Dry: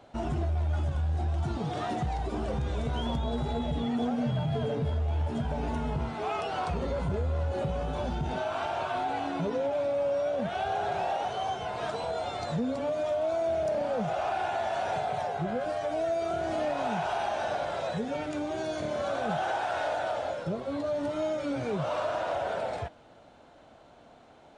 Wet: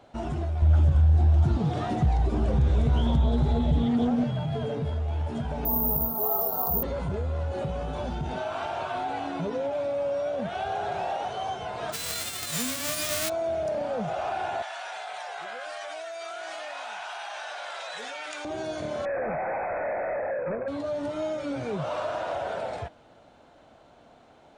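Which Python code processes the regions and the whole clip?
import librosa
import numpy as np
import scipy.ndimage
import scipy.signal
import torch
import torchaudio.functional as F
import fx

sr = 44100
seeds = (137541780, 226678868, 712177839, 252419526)

y = fx.chain(x, sr, fx.low_shelf(hz=250.0, db=11.0),
    fx.doppler_dist(depth_ms=0.18), at=(0.62, 4.24))
y = fx.chain(y, sr, fx.cheby1_bandstop(low_hz=980.0, high_hz=5600.0, order=2),
    fx.comb(ms=4.5, depth=0.52),
    fx.resample_bad(factor=3, down='filtered', up='zero_stuff'), at=(5.65, 6.83))
y = fx.envelope_flatten(y, sr, power=0.1, at=(11.92, 13.28), fade=0.02)
y = fx.peak_eq(y, sr, hz=920.0, db=-5.0, octaves=0.3, at=(11.92, 13.28), fade=0.02)
y = fx.chain(y, sr, fx.highpass(hz=1300.0, slope=12),
    fx.env_flatten(amount_pct=100), at=(14.62, 18.45))
y = fx.chain(y, sr, fx.peak_eq(hz=530.0, db=13.5, octaves=0.41),
    fx.clip_hard(threshold_db=-27.5),
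    fx.brickwall_lowpass(high_hz=2600.0), at=(19.05, 20.68))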